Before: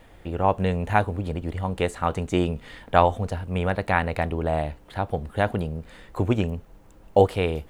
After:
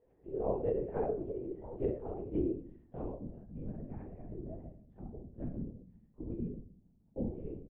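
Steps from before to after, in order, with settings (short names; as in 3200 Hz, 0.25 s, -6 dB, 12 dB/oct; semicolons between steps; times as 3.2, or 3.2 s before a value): Bessel low-pass 2700 Hz; differentiator; notch 1300 Hz, Q 5.2; dynamic EQ 350 Hz, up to +7 dB, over -59 dBFS, Q 0.81; low-pass sweep 410 Hz -> 200 Hz, 1.27–3.61; on a send: early reflections 34 ms -7 dB, 55 ms -6.5 dB; on the sum: shoebox room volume 41 m³, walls mixed, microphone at 0.67 m; LPC vocoder at 8 kHz whisper; gain +3.5 dB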